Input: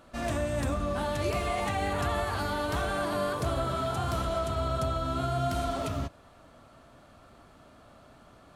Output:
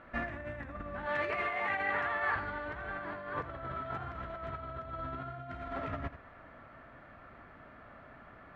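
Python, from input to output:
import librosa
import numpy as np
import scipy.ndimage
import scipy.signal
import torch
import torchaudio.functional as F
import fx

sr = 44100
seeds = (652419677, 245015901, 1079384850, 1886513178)

p1 = fx.highpass(x, sr, hz=610.0, slope=6, at=(1.06, 2.36))
p2 = fx.over_compress(p1, sr, threshold_db=-34.0, ratio=-0.5)
p3 = fx.lowpass_res(p2, sr, hz=1900.0, q=3.4)
p4 = p3 + fx.echo_single(p3, sr, ms=83, db=-13.5, dry=0)
y = p4 * librosa.db_to_amplitude(-5.5)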